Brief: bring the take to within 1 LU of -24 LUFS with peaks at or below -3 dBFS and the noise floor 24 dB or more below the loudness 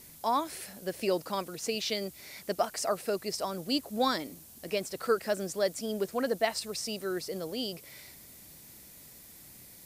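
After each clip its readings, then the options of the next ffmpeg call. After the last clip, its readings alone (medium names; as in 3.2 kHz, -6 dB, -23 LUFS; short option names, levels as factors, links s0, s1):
noise floor -52 dBFS; noise floor target -57 dBFS; loudness -32.5 LUFS; peak level -14.0 dBFS; loudness target -24.0 LUFS
-> -af "afftdn=nr=6:nf=-52"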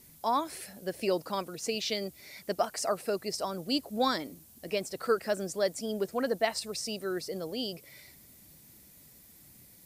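noise floor -56 dBFS; noise floor target -57 dBFS
-> -af "afftdn=nr=6:nf=-56"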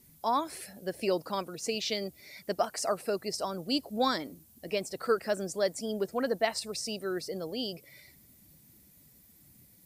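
noise floor -60 dBFS; loudness -32.5 LUFS; peak level -14.0 dBFS; loudness target -24.0 LUFS
-> -af "volume=2.66"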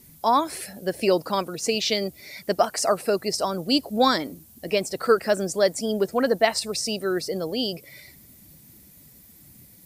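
loudness -24.0 LUFS; peak level -5.5 dBFS; noise floor -51 dBFS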